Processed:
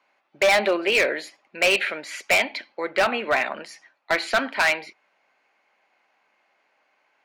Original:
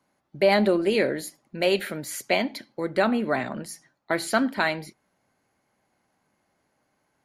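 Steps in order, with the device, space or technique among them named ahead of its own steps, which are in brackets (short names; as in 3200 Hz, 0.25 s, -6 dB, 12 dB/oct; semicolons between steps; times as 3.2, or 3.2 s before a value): megaphone (BPF 610–3900 Hz; bell 2500 Hz +9 dB 0.48 oct; hard clip -20.5 dBFS, distortion -9 dB); gain +6.5 dB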